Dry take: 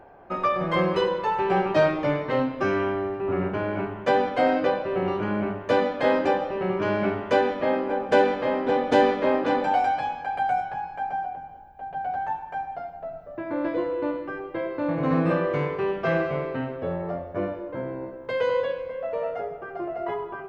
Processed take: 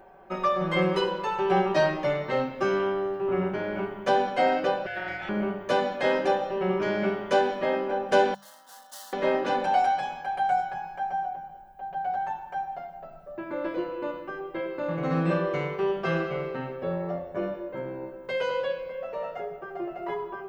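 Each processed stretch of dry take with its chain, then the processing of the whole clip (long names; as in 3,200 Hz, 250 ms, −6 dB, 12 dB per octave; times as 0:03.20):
0:04.86–0:05.29: high-pass filter 530 Hz 6 dB per octave + notch filter 2,900 Hz, Q 7.4 + ring modulation 1,100 Hz
0:08.34–0:09.13: gain into a clipping stage and back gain 22.5 dB + first difference + phaser with its sweep stopped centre 980 Hz, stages 4
whole clip: high-shelf EQ 5,000 Hz +10.5 dB; mains-hum notches 50/100/150/200 Hz; comb filter 5.3 ms, depth 64%; level −4 dB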